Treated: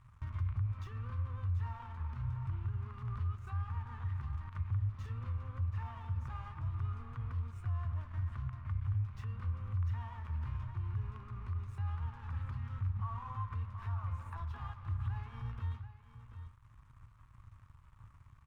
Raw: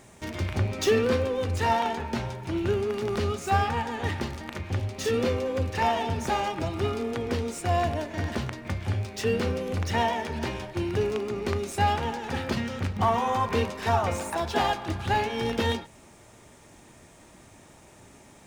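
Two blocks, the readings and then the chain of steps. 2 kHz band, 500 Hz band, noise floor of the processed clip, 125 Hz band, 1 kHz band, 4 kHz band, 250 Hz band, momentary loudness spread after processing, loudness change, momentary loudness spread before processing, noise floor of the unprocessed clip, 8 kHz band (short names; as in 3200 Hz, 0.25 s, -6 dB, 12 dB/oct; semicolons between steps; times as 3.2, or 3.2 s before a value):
-23.0 dB, -35.5 dB, -60 dBFS, -4.5 dB, -21.5 dB, under -25 dB, -24.0 dB, 7 LU, -12.0 dB, 7 LU, -53 dBFS, under -30 dB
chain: compressor 3:1, threshold -42 dBFS, peak gain reduction 17.5 dB; crossover distortion -50.5 dBFS; tone controls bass +10 dB, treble -7 dB; echo 0.731 s -14 dB; limiter -30.5 dBFS, peak gain reduction 8 dB; EQ curve 120 Hz 0 dB, 170 Hz -16 dB, 400 Hz -26 dB, 760 Hz -19 dB, 1100 Hz +1 dB, 1700 Hz -11 dB, 4800 Hz -19 dB; gain +4 dB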